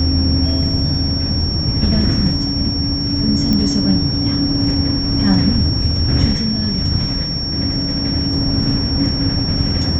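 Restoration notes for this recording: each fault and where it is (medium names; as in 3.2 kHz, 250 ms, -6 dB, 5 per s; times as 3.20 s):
whine 5.5 kHz -21 dBFS
3.53 s: pop -7 dBFS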